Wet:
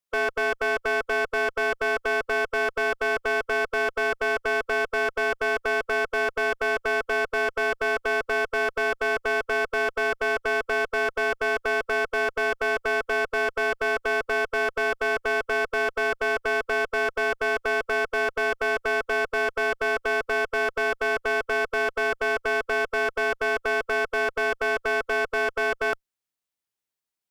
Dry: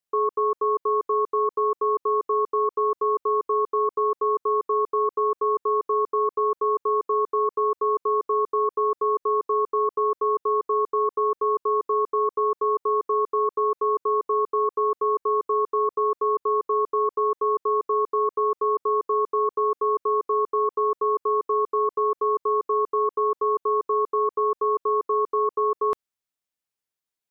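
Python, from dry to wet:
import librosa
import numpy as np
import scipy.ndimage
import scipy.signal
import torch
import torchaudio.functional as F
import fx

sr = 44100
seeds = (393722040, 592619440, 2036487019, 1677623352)

y = fx.clip_asym(x, sr, top_db=-25.0, bottom_db=-16.0)
y = fx.formant_shift(y, sr, semitones=3)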